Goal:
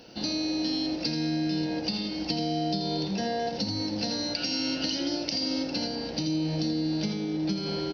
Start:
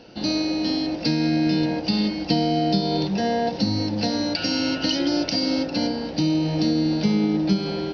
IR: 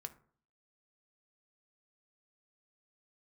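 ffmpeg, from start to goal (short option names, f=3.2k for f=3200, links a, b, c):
-af "aemphasis=mode=production:type=50fm,acompressor=threshold=-23dB:ratio=6,aecho=1:1:83:0.398,volume=-4dB"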